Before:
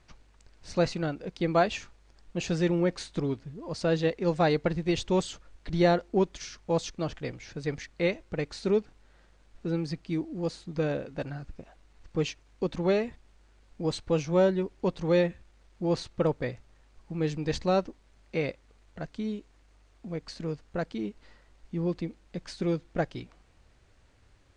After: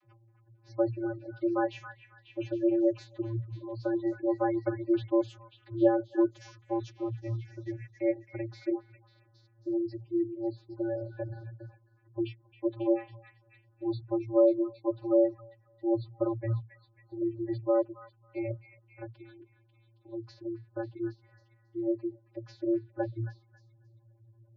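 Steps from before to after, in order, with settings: vocoder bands 32, square 114 Hz; dynamic bell 180 Hz, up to -5 dB, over -45 dBFS, Q 1.5; spectral gate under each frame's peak -25 dB strong; on a send: repeats whose band climbs or falls 272 ms, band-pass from 1.7 kHz, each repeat 0.7 oct, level -5.5 dB

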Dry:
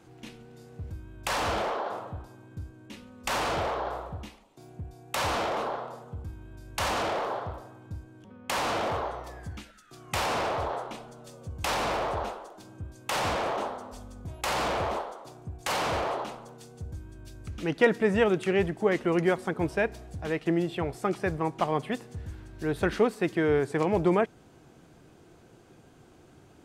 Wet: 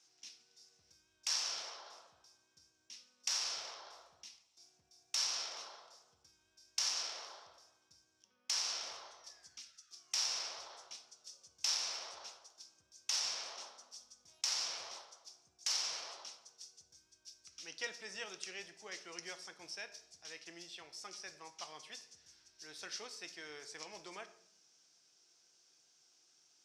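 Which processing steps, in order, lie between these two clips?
band-pass filter 5.5 kHz, Q 6.9; on a send: reverberation RT60 0.70 s, pre-delay 6 ms, DRR 9 dB; on the sum: trim +9.5 dB

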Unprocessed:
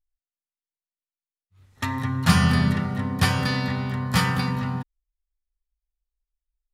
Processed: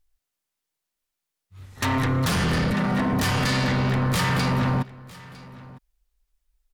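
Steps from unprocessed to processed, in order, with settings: 2.73–3.13 s: high-pass 150 Hz 24 dB/octave; compression 4:1, threshold -26 dBFS, peak gain reduction 12.5 dB; in parallel at -7.5 dB: sine folder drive 15 dB, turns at -13.5 dBFS; on the sum: delay 955 ms -20.5 dB; trim -1.5 dB

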